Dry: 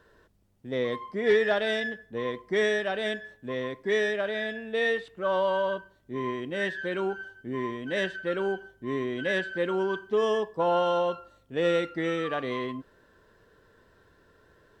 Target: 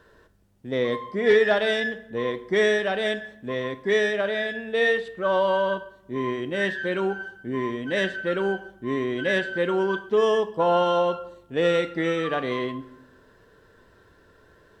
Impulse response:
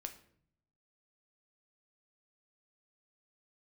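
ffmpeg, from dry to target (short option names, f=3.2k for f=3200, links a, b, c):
-filter_complex "[0:a]asplit=2[a][b];[1:a]atrim=start_sample=2205,asetrate=27342,aresample=44100[c];[b][c]afir=irnorm=-1:irlink=0,volume=-2.5dB[d];[a][d]amix=inputs=2:normalize=0"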